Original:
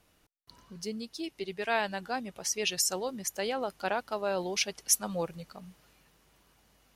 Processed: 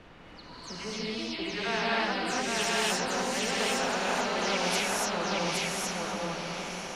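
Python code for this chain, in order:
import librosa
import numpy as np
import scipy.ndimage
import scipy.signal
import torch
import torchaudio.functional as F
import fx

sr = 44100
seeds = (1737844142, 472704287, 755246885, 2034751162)

p1 = fx.spec_delay(x, sr, highs='early', ms=192)
p2 = scipy.signal.sosfilt(scipy.signal.butter(2, 96.0, 'highpass', fs=sr, output='sos'), p1)
p3 = p2 + 10.0 ** (-4.0 / 20.0) * np.pad(p2, (int(818 * sr / 1000.0), 0))[:len(p2)]
p4 = fx.rev_gated(p3, sr, seeds[0], gate_ms=310, shape='rising', drr_db=-7.0)
p5 = fx.dmg_noise_colour(p4, sr, seeds[1], colour='pink', level_db=-65.0)
p6 = scipy.signal.sosfilt(scipy.signal.butter(2, 2600.0, 'lowpass', fs=sr, output='sos'), p5)
p7 = p6 + fx.echo_diffused(p6, sr, ms=1036, feedback_pct=41, wet_db=-14.5, dry=0)
p8 = fx.spectral_comp(p7, sr, ratio=2.0)
y = p8 * librosa.db_to_amplitude(-4.0)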